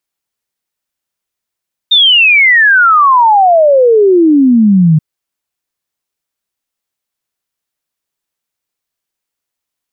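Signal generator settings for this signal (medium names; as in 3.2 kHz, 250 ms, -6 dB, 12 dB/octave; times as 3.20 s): log sweep 3.7 kHz -> 150 Hz 3.08 s -3.5 dBFS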